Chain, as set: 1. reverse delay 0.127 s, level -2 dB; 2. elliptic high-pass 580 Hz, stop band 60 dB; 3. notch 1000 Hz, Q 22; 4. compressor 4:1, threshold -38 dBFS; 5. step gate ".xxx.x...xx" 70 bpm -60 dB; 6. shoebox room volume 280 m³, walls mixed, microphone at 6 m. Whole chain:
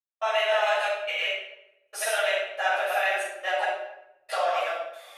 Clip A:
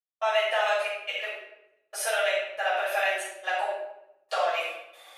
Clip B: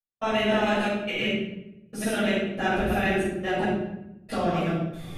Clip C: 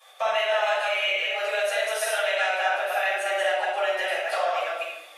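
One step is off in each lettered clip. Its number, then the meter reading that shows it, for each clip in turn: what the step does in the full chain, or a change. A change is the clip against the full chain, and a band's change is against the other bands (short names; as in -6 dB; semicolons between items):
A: 1, momentary loudness spread change +1 LU; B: 2, 8 kHz band -2.5 dB; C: 5, crest factor change -2.0 dB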